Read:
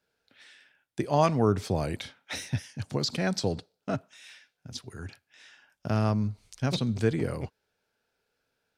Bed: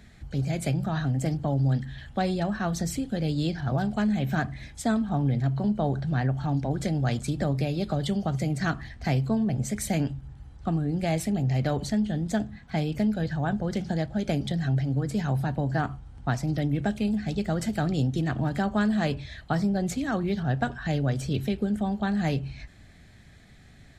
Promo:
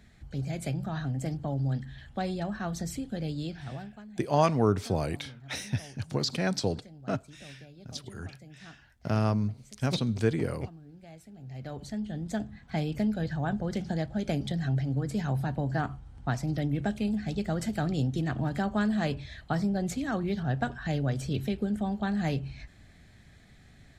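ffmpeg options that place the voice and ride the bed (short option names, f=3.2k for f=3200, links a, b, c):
-filter_complex "[0:a]adelay=3200,volume=-0.5dB[a];[1:a]volume=14.5dB,afade=t=out:st=3.2:d=0.83:silence=0.133352,afade=t=in:st=11.36:d=1.38:silence=0.1[b];[a][b]amix=inputs=2:normalize=0"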